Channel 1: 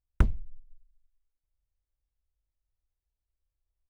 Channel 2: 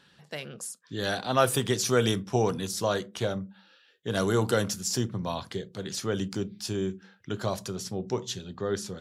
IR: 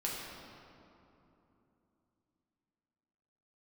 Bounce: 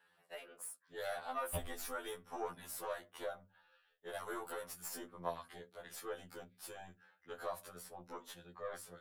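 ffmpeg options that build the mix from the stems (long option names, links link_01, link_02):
-filter_complex "[0:a]asoftclip=type=tanh:threshold=-10dB,firequalizer=gain_entry='entry(170,0);entry(330,-15);entry(630,12);entry(970,-3);entry(1500,-25);entry(3000,11);entry(5300,-13)':delay=0.05:min_phase=1,adelay=1350,volume=2.5dB[link_01];[1:a]bandreject=frequency=50:width_type=h:width=6,bandreject=frequency=100:width_type=h:width=6,bandreject=frequency=150:width_type=h:width=6,bandreject=frequency=200:width_type=h:width=6,bandreject=frequency=250:width_type=h:width=6,alimiter=limit=-18.5dB:level=0:latency=1:release=264,aeval=exprs='(tanh(10*val(0)+0.7)-tanh(0.7))/10':channel_layout=same,volume=-1dB[link_02];[link_01][link_02]amix=inputs=2:normalize=0,acrossover=split=470 2300:gain=0.141 1 0.2[link_03][link_04][link_05];[link_03][link_04][link_05]amix=inputs=3:normalize=0,aexciter=amount=7.9:drive=2:freq=8600,afftfilt=real='re*2*eq(mod(b,4),0)':imag='im*2*eq(mod(b,4),0)':win_size=2048:overlap=0.75"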